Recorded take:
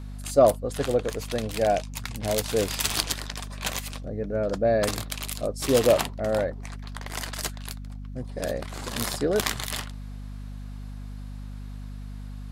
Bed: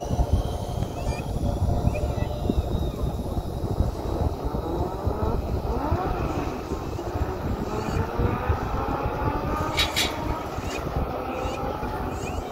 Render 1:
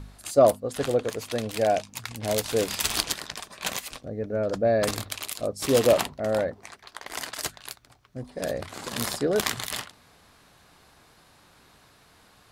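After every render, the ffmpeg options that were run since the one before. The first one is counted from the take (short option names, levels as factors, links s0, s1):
-af "bandreject=f=50:t=h:w=4,bandreject=f=100:t=h:w=4,bandreject=f=150:t=h:w=4,bandreject=f=200:t=h:w=4,bandreject=f=250:t=h:w=4"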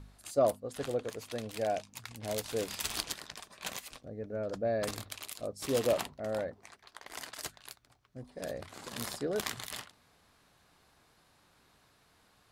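-af "volume=0.335"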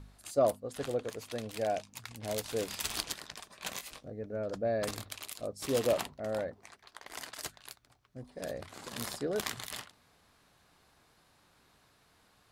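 -filter_complex "[0:a]asettb=1/sr,asplit=3[s0][s1][s2];[s0]atrim=end=3.734[s3];[s1]atrim=start=3.73:end=4.13,asetpts=PTS-STARTPTS,afade=t=in:d=0.004:c=qsin,afade=t=out:st=0.396:d=0.004:c=qsin,asplit=2[s4][s5];[s5]adelay=21,volume=0.501[s6];[s4][s6]amix=inputs=2:normalize=0,atrim=end_sample=17640[s7];[s2]atrim=start=4.126[s8];[s3][s7]acrossfade=d=0.004:c1=hsin:c2=qsin[s9];[s9][s8]acrossfade=d=0.004:c1=qsin:c2=hsin"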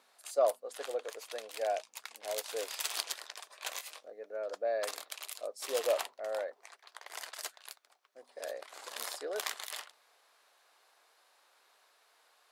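-af "highpass=f=480:w=0.5412,highpass=f=480:w=1.3066"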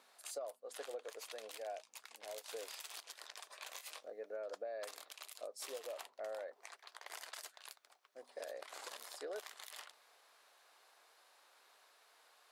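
-af "acompressor=threshold=0.00891:ratio=8,alimiter=level_in=3.16:limit=0.0631:level=0:latency=1:release=111,volume=0.316"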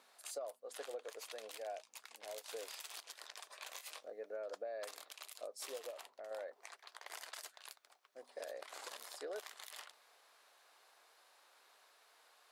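-filter_complex "[0:a]asettb=1/sr,asplit=3[s0][s1][s2];[s0]atrim=end=5.904[s3];[s1]atrim=start=5.9:end=6.31,asetpts=PTS-STARTPTS,afade=t=in:d=0.004:c=qsin,afade=t=out:st=0.406:d=0.004:c=qsin,acompressor=threshold=0.00447:ratio=3:attack=3.2:release=140:knee=1:detection=peak[s4];[s2]atrim=start=6.306[s5];[s3][s4]acrossfade=d=0.004:c1=hsin:c2=qsin[s6];[s6][s5]acrossfade=d=0.004:c1=qsin:c2=hsin"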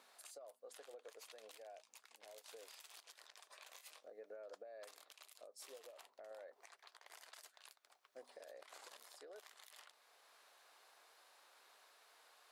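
-af "acompressor=threshold=0.00316:ratio=4,alimiter=level_in=9.44:limit=0.0631:level=0:latency=1:release=446,volume=0.106"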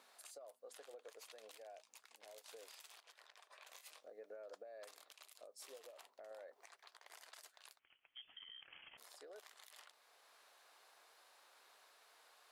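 -filter_complex "[0:a]asettb=1/sr,asplit=3[s0][s1][s2];[s0]atrim=end=2.944[s3];[s1]atrim=start=2.94:end=3.67,asetpts=PTS-STARTPTS,afade=t=in:d=0.004:c=qsin,afade=t=out:st=0.726:d=0.004:c=qsin,bass=f=250:g=-13,treble=f=4000:g=-8[s4];[s2]atrim=start=3.666[s5];[s3][s4]acrossfade=d=0.004:c1=hsin:c2=qsin[s6];[s6][s5]acrossfade=d=0.004:c1=qsin:c2=hsin,asettb=1/sr,asplit=3[s7][s8][s9];[s7]atrim=end=7.794[s10];[s8]atrim=start=7.79:end=8.98,asetpts=PTS-STARTPTS,afade=t=in:d=0.004:c=qsin,afade=t=out:st=1.186:d=0.004:c=qsin,lowpass=f=3100:t=q:w=0.5098,lowpass=f=3100:t=q:w=0.6013,lowpass=f=3100:t=q:w=0.9,lowpass=f=3100:t=q:w=2.563,afreqshift=-3700[s11];[s9]atrim=start=8.976[s12];[s10][s11]acrossfade=d=0.004:c1=hsin:c2=qsin[s13];[s13][s12]acrossfade=d=0.004:c1=qsin:c2=hsin"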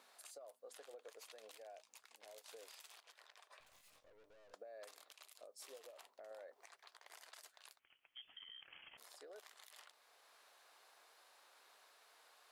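-filter_complex "[0:a]asettb=1/sr,asplit=3[s0][s1][s2];[s0]atrim=end=3.604[s3];[s1]atrim=start=3.6:end=4.54,asetpts=PTS-STARTPTS,afade=t=in:d=0.004:c=qsin,afade=t=out:st=0.936:d=0.004:c=qsin,aeval=exprs='(tanh(1780*val(0)+0.65)-tanh(0.65))/1780':c=same[s4];[s2]atrim=start=4.536[s5];[s3][s4]acrossfade=d=0.004:c1=hsin:c2=qsin[s6];[s6][s5]acrossfade=d=0.004:c1=qsin:c2=hsin"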